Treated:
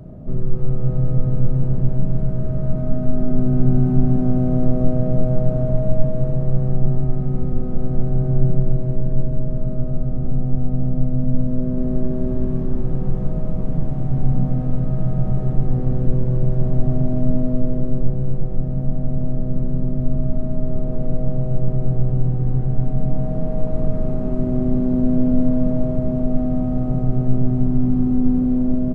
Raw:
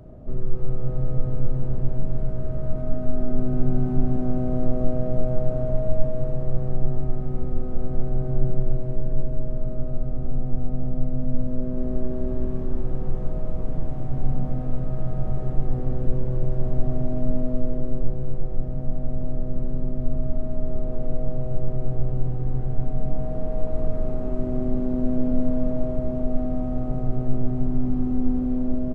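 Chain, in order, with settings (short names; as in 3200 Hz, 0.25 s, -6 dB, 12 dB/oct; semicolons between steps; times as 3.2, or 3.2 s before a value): bell 170 Hz +9 dB 1.1 oct; gain +2.5 dB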